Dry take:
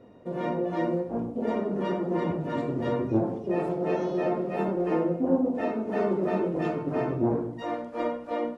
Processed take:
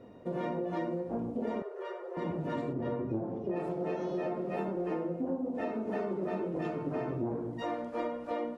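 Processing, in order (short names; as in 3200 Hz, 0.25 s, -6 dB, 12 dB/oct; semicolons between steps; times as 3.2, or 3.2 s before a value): 2.72–3.55 LPF 1300 Hz -> 2000 Hz 6 dB/oct; compressor, threshold -31 dBFS, peak gain reduction 12.5 dB; 1.62–2.17 rippled Chebyshev high-pass 370 Hz, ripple 6 dB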